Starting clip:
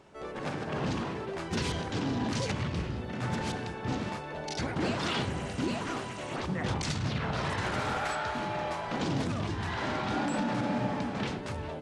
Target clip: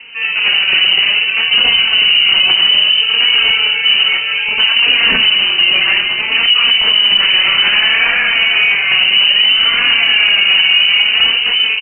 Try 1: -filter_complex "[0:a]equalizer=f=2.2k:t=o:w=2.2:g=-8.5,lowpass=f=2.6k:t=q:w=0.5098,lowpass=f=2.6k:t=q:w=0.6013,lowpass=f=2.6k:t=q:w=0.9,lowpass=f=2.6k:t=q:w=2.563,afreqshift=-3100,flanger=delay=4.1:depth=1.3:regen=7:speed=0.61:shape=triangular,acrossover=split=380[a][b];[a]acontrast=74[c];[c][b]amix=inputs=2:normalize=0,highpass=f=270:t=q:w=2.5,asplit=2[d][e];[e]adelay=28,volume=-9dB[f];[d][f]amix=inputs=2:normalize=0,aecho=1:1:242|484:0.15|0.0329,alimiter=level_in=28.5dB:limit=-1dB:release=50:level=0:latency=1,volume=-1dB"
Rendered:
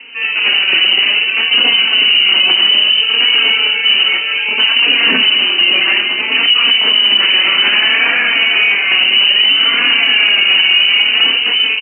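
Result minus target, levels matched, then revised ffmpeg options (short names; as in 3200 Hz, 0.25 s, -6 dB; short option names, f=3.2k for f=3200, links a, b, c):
250 Hz band +5.0 dB
-filter_complex "[0:a]equalizer=f=2.2k:t=o:w=2.2:g=-8.5,lowpass=f=2.6k:t=q:w=0.5098,lowpass=f=2.6k:t=q:w=0.6013,lowpass=f=2.6k:t=q:w=0.9,lowpass=f=2.6k:t=q:w=2.563,afreqshift=-3100,flanger=delay=4.1:depth=1.3:regen=7:speed=0.61:shape=triangular,acrossover=split=380[a][b];[a]acontrast=74[c];[c][b]amix=inputs=2:normalize=0,asplit=2[d][e];[e]adelay=28,volume=-9dB[f];[d][f]amix=inputs=2:normalize=0,aecho=1:1:242|484:0.15|0.0329,alimiter=level_in=28.5dB:limit=-1dB:release=50:level=0:latency=1,volume=-1dB"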